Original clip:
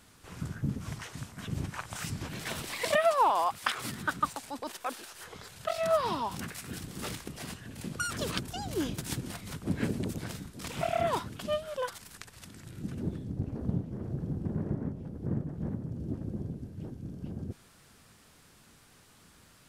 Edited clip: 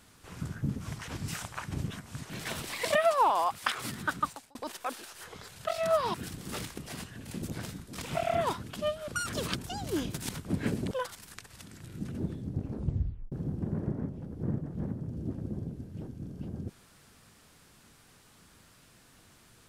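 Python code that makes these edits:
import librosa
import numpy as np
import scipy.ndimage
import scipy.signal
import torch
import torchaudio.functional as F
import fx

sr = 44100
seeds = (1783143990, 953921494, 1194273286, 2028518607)

y = fx.edit(x, sr, fx.reverse_span(start_s=1.08, length_s=1.22),
    fx.fade_out_span(start_s=4.19, length_s=0.36),
    fx.cut(start_s=6.14, length_s=0.5),
    fx.cut(start_s=9.13, length_s=0.33),
    fx.move(start_s=10.08, length_s=1.66, to_s=7.92),
    fx.tape_stop(start_s=13.55, length_s=0.6), tone=tone)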